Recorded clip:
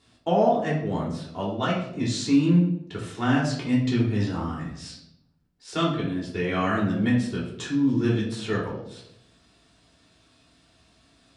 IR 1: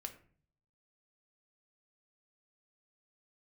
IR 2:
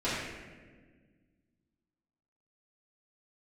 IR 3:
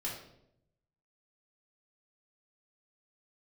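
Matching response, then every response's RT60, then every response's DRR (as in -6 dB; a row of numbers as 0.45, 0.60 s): 3; 0.50, 1.5, 0.75 s; 5.0, -14.5, -5.5 dB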